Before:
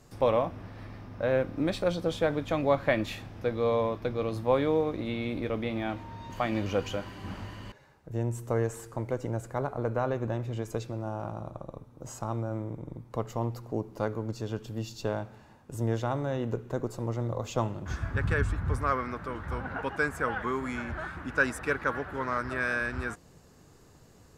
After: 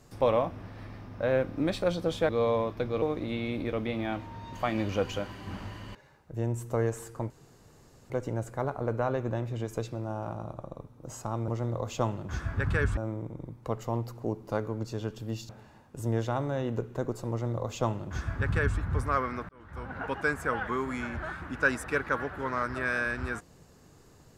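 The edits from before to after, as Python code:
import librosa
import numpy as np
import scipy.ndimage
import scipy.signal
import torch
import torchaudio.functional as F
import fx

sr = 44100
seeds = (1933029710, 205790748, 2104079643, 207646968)

y = fx.edit(x, sr, fx.cut(start_s=2.29, length_s=1.25),
    fx.cut(start_s=4.27, length_s=0.52),
    fx.insert_room_tone(at_s=9.07, length_s=0.8),
    fx.cut(start_s=14.97, length_s=0.27),
    fx.duplicate(start_s=17.05, length_s=1.49, to_s=12.45),
    fx.fade_in_span(start_s=19.24, length_s=0.6), tone=tone)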